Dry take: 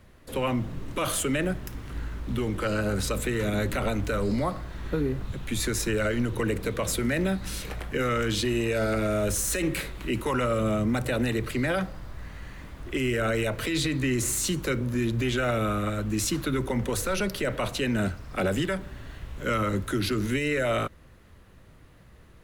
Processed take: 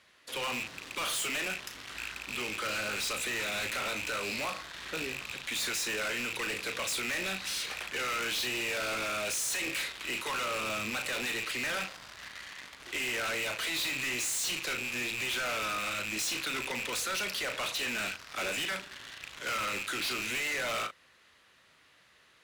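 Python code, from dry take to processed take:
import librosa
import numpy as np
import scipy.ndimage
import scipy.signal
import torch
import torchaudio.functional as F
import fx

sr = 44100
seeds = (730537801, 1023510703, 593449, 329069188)

p1 = fx.rattle_buzz(x, sr, strikes_db=-30.0, level_db=-21.0)
p2 = fx.quant_dither(p1, sr, seeds[0], bits=6, dither='none')
p3 = p1 + (p2 * 10.0 ** (-8.0 / 20.0))
p4 = fx.bandpass_q(p3, sr, hz=3700.0, q=0.76)
p5 = fx.doubler(p4, sr, ms=37.0, db=-10.5)
p6 = np.clip(10.0 ** (35.0 / 20.0) * p5, -1.0, 1.0) / 10.0 ** (35.0 / 20.0)
y = p6 * 10.0 ** (4.0 / 20.0)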